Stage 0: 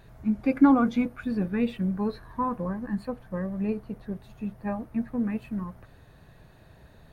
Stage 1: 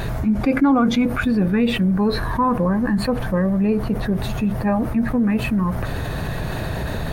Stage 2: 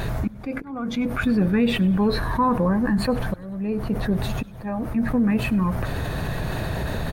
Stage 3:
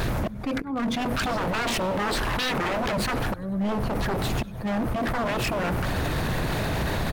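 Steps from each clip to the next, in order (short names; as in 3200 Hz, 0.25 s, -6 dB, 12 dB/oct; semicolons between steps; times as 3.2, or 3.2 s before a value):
fast leveller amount 70%
auto swell 0.669 s; frequency-shifting echo 99 ms, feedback 62%, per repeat -75 Hz, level -22.5 dB; gain -1.5 dB
wavefolder -24.5 dBFS; gain +3.5 dB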